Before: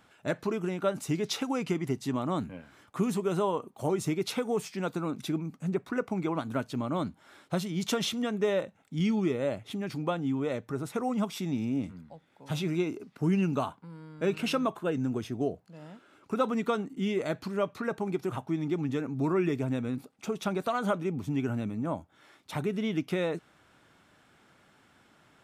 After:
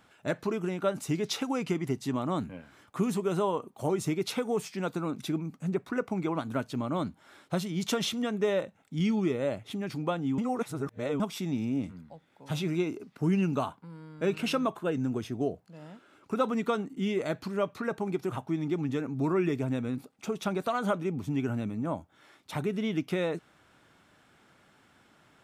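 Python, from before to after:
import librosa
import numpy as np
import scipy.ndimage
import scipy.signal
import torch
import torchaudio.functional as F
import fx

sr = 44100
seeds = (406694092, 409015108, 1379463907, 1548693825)

y = fx.edit(x, sr, fx.reverse_span(start_s=10.38, length_s=0.82), tone=tone)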